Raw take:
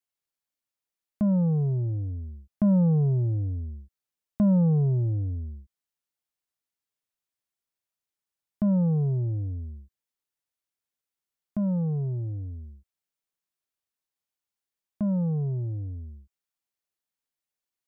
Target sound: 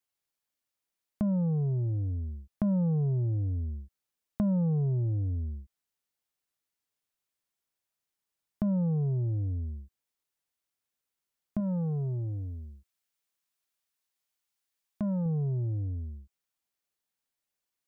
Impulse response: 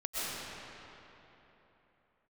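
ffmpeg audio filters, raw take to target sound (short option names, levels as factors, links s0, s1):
-filter_complex "[0:a]asettb=1/sr,asplit=3[s0][s1][s2];[s0]atrim=end=11.604[s3];[s1]atrim=start=11.6:end=15.26,asetpts=PTS-STARTPTS,afade=t=in:d=0.004:c=qsin,afade=t=out:st=3.656:d=0.004:c=qsin,tiltshelf=f=870:g=-3.5[s4];[s2]atrim=start=15.256[s5];[s3][s4]acrossfade=d=0.004:c1=hsin:c2=qsin[s6];[s6][s5]acrossfade=d=0.004:c1=qsin:c2=hsin,acompressor=threshold=0.0251:ratio=2.5,volume=1.26"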